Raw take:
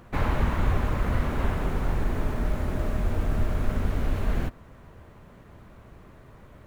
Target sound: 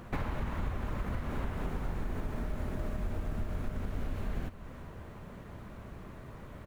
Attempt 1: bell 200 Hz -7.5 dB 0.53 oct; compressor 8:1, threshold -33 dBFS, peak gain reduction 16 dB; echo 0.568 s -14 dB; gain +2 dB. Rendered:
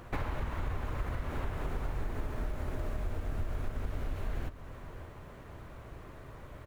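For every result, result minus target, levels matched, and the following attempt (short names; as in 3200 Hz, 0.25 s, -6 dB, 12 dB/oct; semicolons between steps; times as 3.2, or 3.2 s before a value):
echo 0.226 s late; 250 Hz band -3.5 dB
bell 200 Hz -7.5 dB 0.53 oct; compressor 8:1, threshold -33 dBFS, peak gain reduction 16 dB; echo 0.342 s -14 dB; gain +2 dB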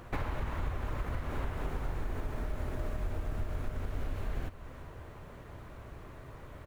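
250 Hz band -3.5 dB
bell 200 Hz +2.5 dB 0.53 oct; compressor 8:1, threshold -33 dBFS, peak gain reduction 16 dB; echo 0.342 s -14 dB; gain +2 dB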